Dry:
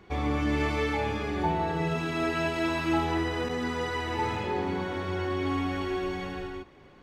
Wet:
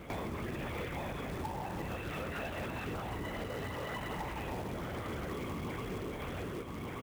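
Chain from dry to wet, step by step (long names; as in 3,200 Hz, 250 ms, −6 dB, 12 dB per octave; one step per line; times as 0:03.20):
linear-prediction vocoder at 8 kHz whisper
high-pass filter 57 Hz 12 dB per octave
floating-point word with a short mantissa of 2 bits
on a send: single-tap delay 1,183 ms −14.5 dB
on the sum: downward compressor 6 to 1, threshold −45 dBFS, peak gain reduction 20.5 dB
in parallel at −12 dB: wrap-around overflow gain 40 dB
on the sum: level +6 dB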